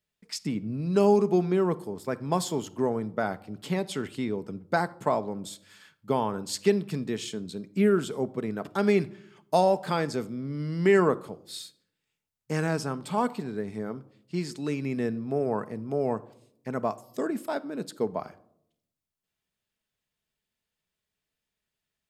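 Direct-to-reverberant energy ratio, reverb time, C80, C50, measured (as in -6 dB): 12.0 dB, 0.70 s, 23.0 dB, 19.0 dB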